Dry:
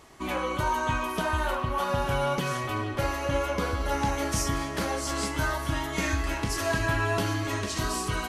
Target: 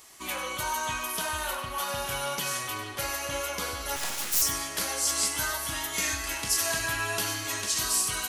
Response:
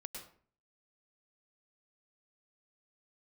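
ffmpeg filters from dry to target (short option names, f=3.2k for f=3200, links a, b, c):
-filter_complex "[0:a]lowshelf=f=450:g=-7,asettb=1/sr,asplit=3[a][b][c];[a]atrim=end=3.964[d];[b]atrim=start=3.96:end=4.42,asetpts=PTS-STARTPTS,afade=t=in:d=0.004:c=qsin,afade=t=out:st=0.456:d=0.004:c=qsin,aeval=exprs='abs(val(0))':c=same[e];[c]atrim=start=4.416[f];[d][e]acrossfade=d=0.004:c1=hsin:c2=qsin[g];[g][f]acrossfade=d=0.004:c1=qsin:c2=hsin,crystalizer=i=5:c=0[h];[1:a]atrim=start_sample=2205,atrim=end_sample=4410[i];[h][i]afir=irnorm=-1:irlink=0"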